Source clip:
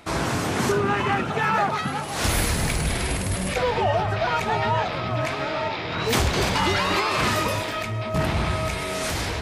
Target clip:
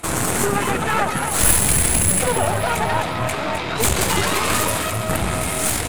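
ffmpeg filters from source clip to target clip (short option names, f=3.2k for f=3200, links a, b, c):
-filter_complex "[0:a]lowpass=11k,asplit=2[a][b];[b]alimiter=limit=-21.5dB:level=0:latency=1:release=186,volume=-2dB[c];[a][c]amix=inputs=2:normalize=0,aexciter=amount=6.1:drive=6.2:freq=7.4k,aeval=exprs='0.794*(cos(1*acos(clip(val(0)/0.794,-1,1)))-cos(1*PI/2))+0.355*(cos(2*acos(clip(val(0)/0.794,-1,1)))-cos(2*PI/2))+0.316*(cos(4*acos(clip(val(0)/0.794,-1,1)))-cos(4*PI/2))+0.00891*(cos(8*acos(clip(val(0)/0.794,-1,1)))-cos(8*PI/2))':c=same,atempo=1.6,asplit=2[d][e];[e]asplit=5[f][g][h][i][j];[f]adelay=259,afreqshift=81,volume=-8.5dB[k];[g]adelay=518,afreqshift=162,volume=-15.8dB[l];[h]adelay=777,afreqshift=243,volume=-23.2dB[m];[i]adelay=1036,afreqshift=324,volume=-30.5dB[n];[j]adelay=1295,afreqshift=405,volume=-37.8dB[o];[k][l][m][n][o]amix=inputs=5:normalize=0[p];[d][p]amix=inputs=2:normalize=0,volume=-1dB"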